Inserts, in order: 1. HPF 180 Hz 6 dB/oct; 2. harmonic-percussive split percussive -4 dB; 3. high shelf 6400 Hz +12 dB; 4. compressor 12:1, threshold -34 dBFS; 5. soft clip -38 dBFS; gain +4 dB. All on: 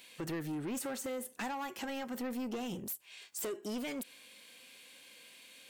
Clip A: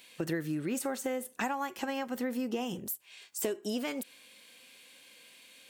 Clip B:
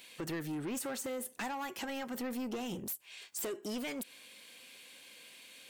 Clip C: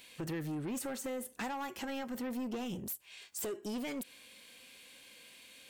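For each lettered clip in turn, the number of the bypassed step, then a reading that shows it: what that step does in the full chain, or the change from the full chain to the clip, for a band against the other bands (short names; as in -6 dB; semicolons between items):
5, distortion -10 dB; 2, 4 kHz band +1.5 dB; 1, 125 Hz band +3.0 dB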